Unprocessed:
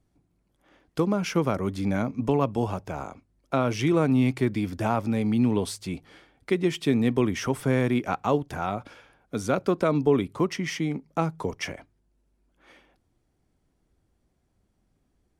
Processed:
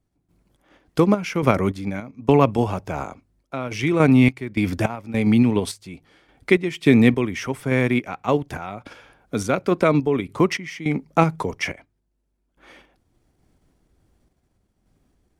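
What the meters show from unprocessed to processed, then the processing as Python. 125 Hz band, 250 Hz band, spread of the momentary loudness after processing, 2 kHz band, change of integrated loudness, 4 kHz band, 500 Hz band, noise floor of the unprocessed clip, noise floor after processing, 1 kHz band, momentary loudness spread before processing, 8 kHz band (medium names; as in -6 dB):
+5.0 dB, +5.5 dB, 15 LU, +8.0 dB, +5.5 dB, +3.5 dB, +4.5 dB, -72 dBFS, -72 dBFS, +4.5 dB, 12 LU, +2.0 dB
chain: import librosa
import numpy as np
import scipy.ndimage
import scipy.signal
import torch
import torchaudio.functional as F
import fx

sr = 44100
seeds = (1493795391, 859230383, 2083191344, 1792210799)

p1 = fx.dynamic_eq(x, sr, hz=2200.0, q=2.5, threshold_db=-49.0, ratio=4.0, max_db=7)
p2 = fx.level_steps(p1, sr, step_db=12)
p3 = p1 + (p2 * librosa.db_to_amplitude(-1.0))
p4 = fx.tremolo_random(p3, sr, seeds[0], hz=3.5, depth_pct=85)
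y = p4 * librosa.db_to_amplitude(4.5)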